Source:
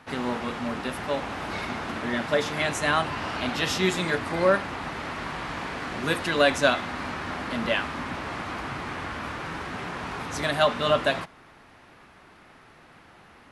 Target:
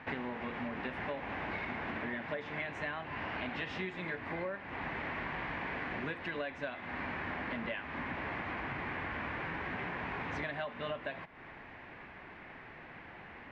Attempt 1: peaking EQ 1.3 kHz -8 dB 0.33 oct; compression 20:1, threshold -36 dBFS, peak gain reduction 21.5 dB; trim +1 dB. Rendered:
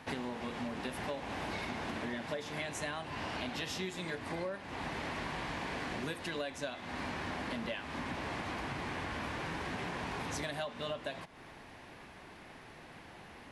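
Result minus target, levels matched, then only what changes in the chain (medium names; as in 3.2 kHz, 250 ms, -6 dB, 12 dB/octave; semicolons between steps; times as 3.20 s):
2 kHz band -2.5 dB
add first: resonant low-pass 2.1 kHz, resonance Q 1.8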